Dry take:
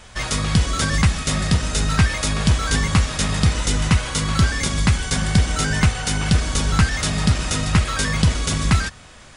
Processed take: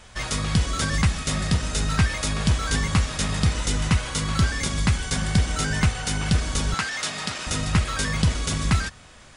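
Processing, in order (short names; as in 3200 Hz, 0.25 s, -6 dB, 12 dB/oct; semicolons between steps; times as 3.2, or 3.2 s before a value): 6.74–7.47 weighting filter A; gain -4 dB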